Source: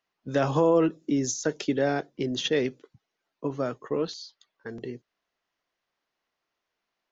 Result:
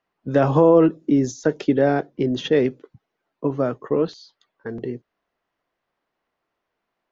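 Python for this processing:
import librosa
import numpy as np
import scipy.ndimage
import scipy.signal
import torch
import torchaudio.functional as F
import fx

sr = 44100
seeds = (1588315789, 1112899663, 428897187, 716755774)

y = fx.lowpass(x, sr, hz=1200.0, slope=6)
y = F.gain(torch.from_numpy(y), 8.0).numpy()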